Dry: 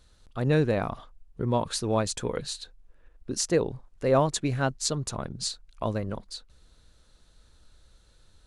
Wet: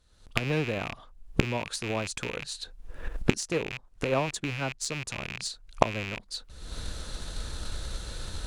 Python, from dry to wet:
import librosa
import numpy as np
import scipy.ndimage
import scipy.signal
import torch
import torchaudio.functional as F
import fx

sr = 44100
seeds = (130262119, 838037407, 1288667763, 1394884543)

y = fx.rattle_buzz(x, sr, strikes_db=-40.0, level_db=-18.0)
y = fx.recorder_agc(y, sr, target_db=-16.0, rise_db_per_s=47.0, max_gain_db=30)
y = fx.cheby_harmonics(y, sr, harmonics=(7,), levels_db=(-22,), full_scale_db=-1.0)
y = F.gain(torch.from_numpy(y), -1.0).numpy()